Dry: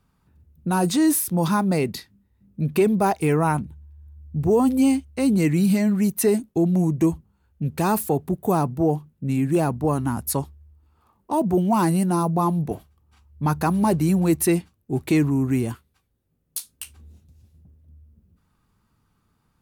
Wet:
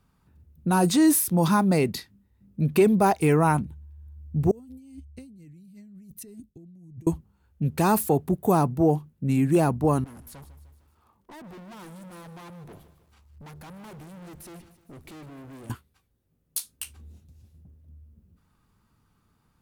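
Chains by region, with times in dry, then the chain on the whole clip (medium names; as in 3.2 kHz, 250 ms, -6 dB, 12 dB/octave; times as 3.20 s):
4.51–7.07 s: amplifier tone stack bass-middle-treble 10-0-1 + compressor with a negative ratio -46 dBFS
10.04–15.70 s: valve stage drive 35 dB, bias 0.45 + compression, threshold -44 dBFS + bit-crushed delay 152 ms, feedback 55%, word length 10-bit, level -13 dB
whole clip: none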